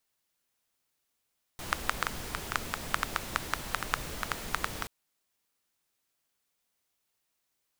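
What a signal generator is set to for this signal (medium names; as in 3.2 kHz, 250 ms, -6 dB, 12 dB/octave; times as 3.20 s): rain from filtered ticks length 3.28 s, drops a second 6.4, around 1.3 kHz, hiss -2 dB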